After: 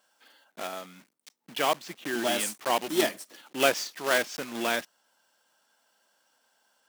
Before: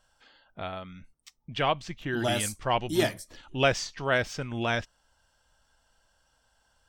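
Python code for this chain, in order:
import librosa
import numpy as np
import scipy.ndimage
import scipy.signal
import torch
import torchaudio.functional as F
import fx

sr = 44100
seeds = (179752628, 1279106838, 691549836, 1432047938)

y = fx.block_float(x, sr, bits=3)
y = scipy.signal.sosfilt(scipy.signal.butter(4, 220.0, 'highpass', fs=sr, output='sos'), y)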